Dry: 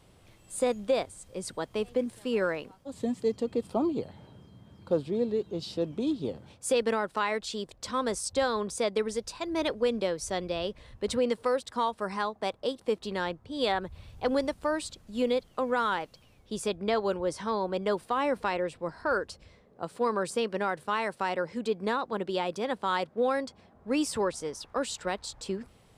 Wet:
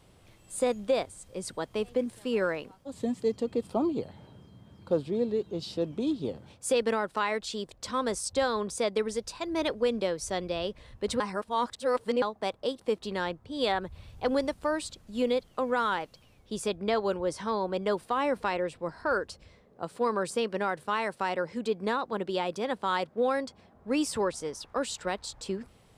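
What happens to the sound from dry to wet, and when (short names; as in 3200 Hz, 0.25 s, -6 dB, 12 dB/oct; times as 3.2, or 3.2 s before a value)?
11.2–12.22 reverse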